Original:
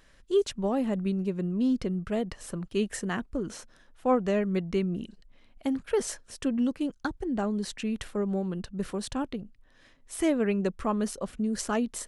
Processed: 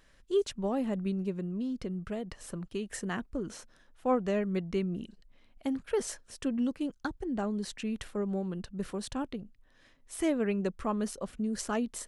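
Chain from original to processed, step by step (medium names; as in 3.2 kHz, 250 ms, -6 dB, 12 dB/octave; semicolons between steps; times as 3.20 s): 1.34–2.89 s: compression, threshold -28 dBFS, peak gain reduction 6.5 dB; trim -3.5 dB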